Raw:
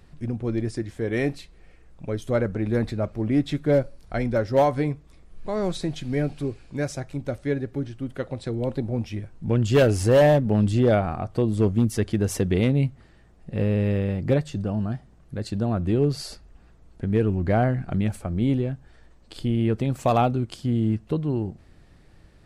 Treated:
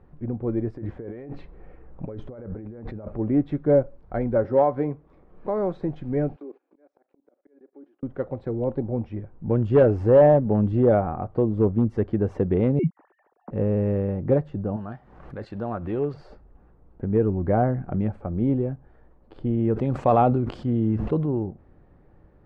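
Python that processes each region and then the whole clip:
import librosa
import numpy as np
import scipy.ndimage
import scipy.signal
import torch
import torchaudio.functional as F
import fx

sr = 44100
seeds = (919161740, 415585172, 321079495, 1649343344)

y = fx.chain(x, sr, fx.high_shelf(hz=8800.0, db=-11.5),
    fx.over_compress(threshold_db=-35.0, ratio=-1.0), at=(0.76, 3.19))
y = fx.chain(y, sr, fx.low_shelf(hz=130.0, db=-8.5),
    fx.band_squash(depth_pct=40), at=(4.44, 5.83))
y = fx.chain(y, sr, fx.cheby1_highpass(hz=280.0, order=4),
    fx.level_steps(step_db=19),
    fx.auto_swell(attack_ms=724.0), at=(6.36, 8.03))
y = fx.chain(y, sr, fx.sine_speech(),
    fx.dynamic_eq(hz=1000.0, q=1.3, threshold_db=-49.0, ratio=4.0, max_db=5), at=(12.79, 13.51))
y = fx.chain(y, sr, fx.tilt_shelf(db=-9.0, hz=790.0),
    fx.pre_swell(db_per_s=61.0), at=(14.76, 16.14))
y = fx.chain(y, sr, fx.high_shelf(hz=2900.0, db=11.5),
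    fx.sustainer(db_per_s=30.0), at=(19.73, 21.26))
y = scipy.signal.sosfilt(scipy.signal.butter(2, 1200.0, 'lowpass', fs=sr, output='sos'), y)
y = fx.peak_eq(y, sr, hz=620.0, db=5.5, octaves=2.4)
y = fx.notch(y, sr, hz=660.0, q=12.0)
y = y * librosa.db_to_amplitude(-2.5)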